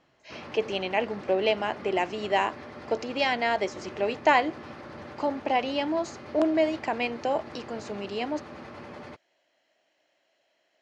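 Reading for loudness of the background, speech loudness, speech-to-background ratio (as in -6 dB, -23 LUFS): -43.0 LUFS, -28.0 LUFS, 15.0 dB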